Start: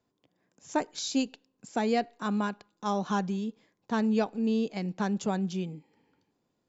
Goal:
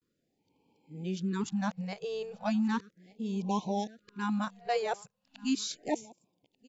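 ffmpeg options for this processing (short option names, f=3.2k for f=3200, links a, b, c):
-af "areverse,aecho=1:1:1188:0.0708,afftfilt=real='re*(1-between(b*sr/1024,260*pow(1600/260,0.5+0.5*sin(2*PI*0.36*pts/sr))/1.41,260*pow(1600/260,0.5+0.5*sin(2*PI*0.36*pts/sr))*1.41))':imag='im*(1-between(b*sr/1024,260*pow(1600/260,0.5+0.5*sin(2*PI*0.36*pts/sr))/1.41,260*pow(1600/260,0.5+0.5*sin(2*PI*0.36*pts/sr))*1.41))':win_size=1024:overlap=0.75,volume=-2dB"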